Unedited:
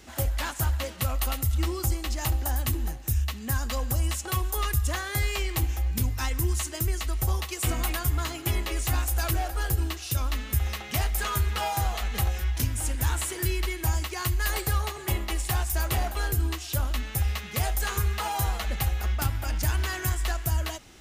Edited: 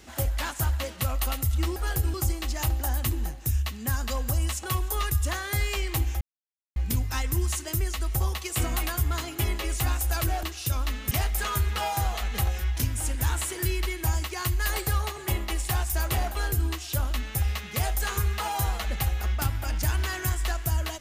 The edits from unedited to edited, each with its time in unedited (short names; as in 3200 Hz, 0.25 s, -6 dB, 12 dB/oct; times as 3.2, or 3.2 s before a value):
5.83 insert silence 0.55 s
9.5–9.88 move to 1.76
10.56–10.91 cut